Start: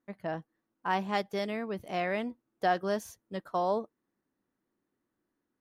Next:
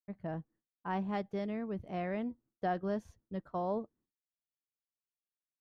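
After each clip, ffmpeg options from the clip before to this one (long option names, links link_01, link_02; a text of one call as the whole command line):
ffmpeg -i in.wav -af "agate=range=-33dB:threshold=-57dB:ratio=3:detection=peak,aemphasis=mode=reproduction:type=riaa,volume=-8dB" out.wav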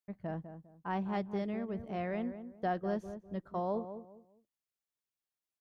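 ffmpeg -i in.wav -filter_complex "[0:a]asplit=2[link_01][link_02];[link_02]adelay=201,lowpass=frequency=1100:poles=1,volume=-9.5dB,asplit=2[link_03][link_04];[link_04]adelay=201,lowpass=frequency=1100:poles=1,volume=0.29,asplit=2[link_05][link_06];[link_06]adelay=201,lowpass=frequency=1100:poles=1,volume=0.29[link_07];[link_01][link_03][link_05][link_07]amix=inputs=4:normalize=0" out.wav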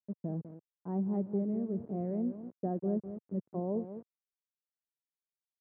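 ffmpeg -i in.wav -af "aeval=exprs='val(0)*gte(abs(val(0)),0.00531)':channel_layout=same,asuperpass=centerf=230:order=4:qfactor=0.69,volume=4.5dB" out.wav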